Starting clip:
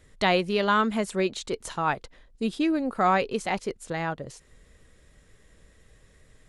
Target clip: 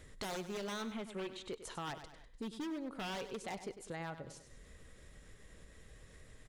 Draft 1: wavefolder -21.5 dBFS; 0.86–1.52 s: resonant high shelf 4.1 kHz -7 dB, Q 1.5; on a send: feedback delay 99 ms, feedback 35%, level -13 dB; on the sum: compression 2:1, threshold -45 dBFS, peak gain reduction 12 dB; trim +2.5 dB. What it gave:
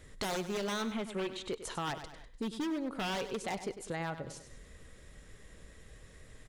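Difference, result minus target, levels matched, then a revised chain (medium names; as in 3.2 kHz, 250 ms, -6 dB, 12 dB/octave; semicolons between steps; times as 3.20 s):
compression: peak gain reduction -6 dB
wavefolder -21.5 dBFS; 0.86–1.52 s: resonant high shelf 4.1 kHz -7 dB, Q 1.5; on a send: feedback delay 99 ms, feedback 35%, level -13 dB; on the sum: compression 2:1, threshold -57 dBFS, peak gain reduction 18 dB; trim +2.5 dB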